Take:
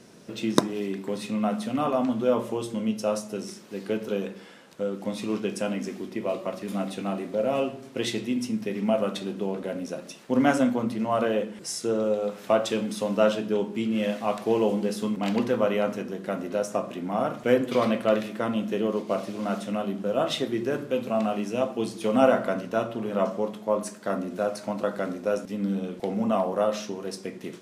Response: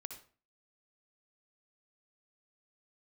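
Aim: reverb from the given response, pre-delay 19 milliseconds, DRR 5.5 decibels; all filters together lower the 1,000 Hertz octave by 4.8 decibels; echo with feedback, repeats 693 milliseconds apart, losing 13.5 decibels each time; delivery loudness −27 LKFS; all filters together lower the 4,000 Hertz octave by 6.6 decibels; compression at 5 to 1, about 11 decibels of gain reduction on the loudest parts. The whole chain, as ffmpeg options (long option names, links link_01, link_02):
-filter_complex "[0:a]equalizer=frequency=1000:width_type=o:gain=-7,equalizer=frequency=4000:width_type=o:gain=-8.5,acompressor=threshold=-27dB:ratio=5,aecho=1:1:693|1386:0.211|0.0444,asplit=2[link_01][link_02];[1:a]atrim=start_sample=2205,adelay=19[link_03];[link_02][link_03]afir=irnorm=-1:irlink=0,volume=-2dB[link_04];[link_01][link_04]amix=inputs=2:normalize=0,volume=4.5dB"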